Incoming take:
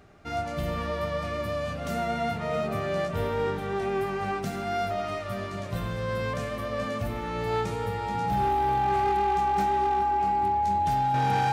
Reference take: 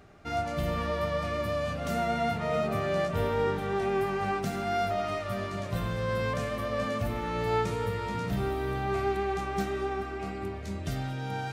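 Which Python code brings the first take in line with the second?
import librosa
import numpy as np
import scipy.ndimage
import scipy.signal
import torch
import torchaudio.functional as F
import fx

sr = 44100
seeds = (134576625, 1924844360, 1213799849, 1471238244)

y = fx.fix_declip(x, sr, threshold_db=-20.0)
y = fx.notch(y, sr, hz=830.0, q=30.0)
y = fx.gain(y, sr, db=fx.steps((0.0, 0.0), (11.14, -7.5)))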